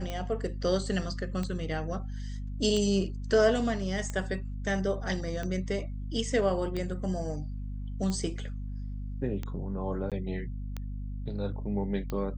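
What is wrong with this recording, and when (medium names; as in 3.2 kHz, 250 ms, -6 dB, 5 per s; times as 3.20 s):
hum 50 Hz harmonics 5 -36 dBFS
tick 45 rpm -21 dBFS
10.10–10.12 s: dropout 17 ms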